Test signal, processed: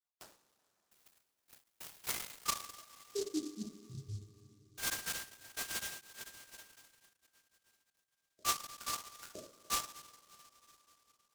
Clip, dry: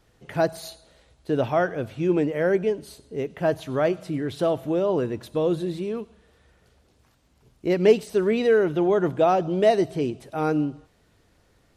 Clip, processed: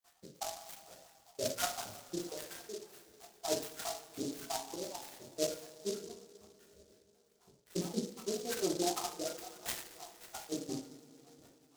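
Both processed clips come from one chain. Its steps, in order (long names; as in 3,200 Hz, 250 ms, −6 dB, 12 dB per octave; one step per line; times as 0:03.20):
time-frequency cells dropped at random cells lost 82%
high-pass filter 400 Hz 6 dB per octave
high-shelf EQ 2,100 Hz +7.5 dB
brickwall limiter −20 dBFS
reversed playback
downward compressor 6 to 1, threshold −38 dBFS
reversed playback
square-wave tremolo 5.8 Hz, depth 65%, duty 50%
high-frequency loss of the air 460 metres
coupled-rooms reverb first 0.44 s, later 4.1 s, from −22 dB, DRR −5.5 dB
short delay modulated by noise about 5,400 Hz, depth 0.14 ms
level +1.5 dB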